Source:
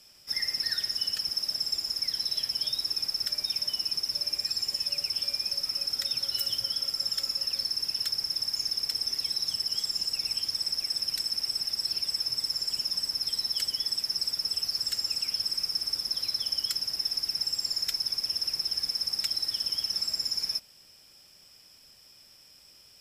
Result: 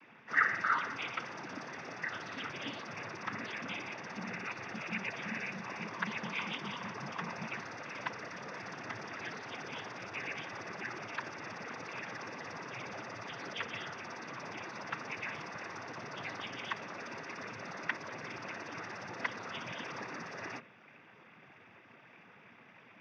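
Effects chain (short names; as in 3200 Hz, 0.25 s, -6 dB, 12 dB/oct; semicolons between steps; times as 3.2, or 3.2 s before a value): mistuned SSB -370 Hz 460–2500 Hz; noise vocoder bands 16; gain +12.5 dB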